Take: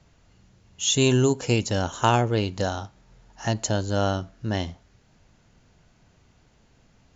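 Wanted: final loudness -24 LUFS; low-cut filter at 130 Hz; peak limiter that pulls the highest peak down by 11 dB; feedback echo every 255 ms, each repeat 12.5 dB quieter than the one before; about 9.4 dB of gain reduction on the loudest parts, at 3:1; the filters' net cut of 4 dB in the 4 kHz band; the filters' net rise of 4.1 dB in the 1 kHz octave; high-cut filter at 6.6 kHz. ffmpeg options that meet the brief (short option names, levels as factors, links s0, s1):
-af "highpass=130,lowpass=6600,equalizer=f=1000:t=o:g=5.5,equalizer=f=4000:t=o:g=-5.5,acompressor=threshold=0.0631:ratio=3,alimiter=limit=0.112:level=0:latency=1,aecho=1:1:255|510|765:0.237|0.0569|0.0137,volume=2.66"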